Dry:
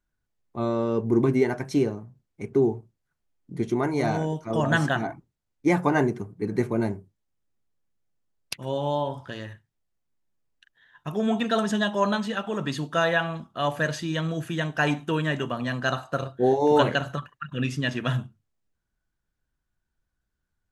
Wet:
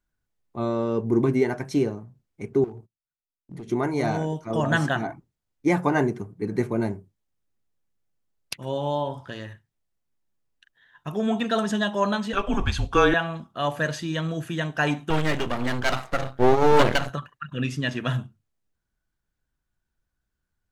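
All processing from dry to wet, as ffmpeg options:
-filter_complex "[0:a]asettb=1/sr,asplit=3[a][b][c];[a]atrim=end=2.644[d];[b]atrim=start=2.64:end=3.7,asetpts=PTS-STARTPTS,afade=t=in:d=0.004:c=qsin,afade=t=out:st=1.056:d=0.004:c=qsin,agate=range=-22dB:threshold=-53dB:ratio=16:release=100:detection=peak,acompressor=threshold=-34dB:ratio=4:attack=3.2:release=140:knee=1:detection=peak,volume=33dB,asoftclip=hard,volume=-33dB[e];[c]atrim=start=3.696[f];[d][e]acrossfade=d=0.004:c1=hsin:c2=qsin[g];[g][f]acrossfade=d=0.004:c1=qsin:c2=hsin,asettb=1/sr,asplit=3[h][i][j];[h]atrim=end=12.334[k];[i]atrim=start=12.33:end=13.14,asetpts=PTS-STARTPTS,afade=t=in:d=0.004:c=qsin,afade=t=out:st=0.806:d=0.004:c=qsin,highshelf=f=8.9k:g=-8,acontrast=31,afreqshift=-190[l];[j]atrim=start=13.136[m];[k][l]acrossfade=d=0.004:c1=hsin:c2=qsin[n];[n][m]acrossfade=d=0.004:c1=qsin:c2=hsin,asettb=1/sr,asplit=3[o][p][q];[o]atrim=end=15.104[r];[p]atrim=start=15.1:end=17.1,asetpts=PTS-STARTPTS,afade=t=in:d=0.004:c=qsin,afade=t=out:st=1.996:d=0.004:c=qsin,acontrast=89,aeval=exprs='max(val(0),0)':c=same[s];[q]atrim=start=17.096[t];[r][s]acrossfade=d=0.004:c1=hsin:c2=qsin[u];[u][t]acrossfade=d=0.004:c1=qsin:c2=hsin"

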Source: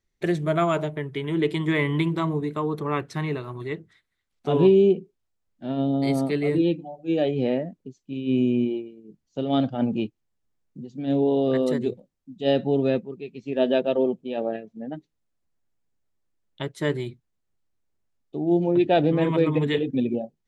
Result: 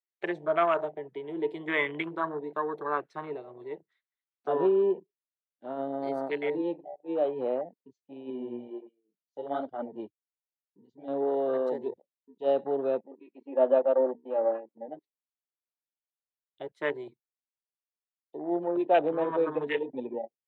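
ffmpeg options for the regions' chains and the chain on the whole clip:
-filter_complex "[0:a]asettb=1/sr,asplit=3[a][b][c];[a]atrim=end=8.304[d];[b]atrim=start=8.3:end=11.08,asetpts=PTS-STARTPTS,afade=t=in:d=0.004:c=qsin,afade=t=out:st=2.776:d=0.004:c=qsin,asuperstop=centerf=2600:order=8:qfactor=7.1,flanger=delay=2.6:depth=7.3:regen=-3:speed=1.4:shape=sinusoidal[e];[c]atrim=start=11.076[f];[d][e]acrossfade=d=0.004:c1=hsin:c2=qsin[g];[g][f]acrossfade=d=0.004:c1=qsin:c2=hsin,asettb=1/sr,asplit=3[h][i][j];[h]atrim=end=13.014[k];[i]atrim=start=13.01:end=14.88,asetpts=PTS-STARTPTS,afade=t=in:d=0.004:c=qsin,afade=t=out:st=1.866:d=0.004:c=qsin,highpass=220,lowpass=2.1k,bandreject=f=60:t=h:w=6,bandreject=f=120:t=h:w=6,bandreject=f=180:t=h:w=6,bandreject=f=240:t=h:w=6,bandreject=f=300:t=h:w=6,aecho=1:1:3.6:0.98,atrim=end_sample=82467[l];[j]atrim=start=14.876[m];[k][l]acrossfade=d=0.004:c1=hsin:c2=qsin[n];[n][m]acrossfade=d=0.004:c1=qsin:c2=hsin,afwtdn=0.0251,highpass=f=190:p=1,acrossover=split=410 4700:gain=0.1 1 0.224[o][p][q];[o][p][q]amix=inputs=3:normalize=0"

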